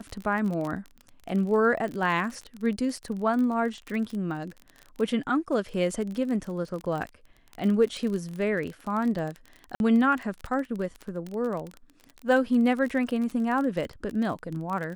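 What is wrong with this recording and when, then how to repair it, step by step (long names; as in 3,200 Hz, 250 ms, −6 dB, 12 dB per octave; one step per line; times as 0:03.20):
surface crackle 29 per second −31 dBFS
0:09.75–0:09.80: drop-out 51 ms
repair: click removal
repair the gap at 0:09.75, 51 ms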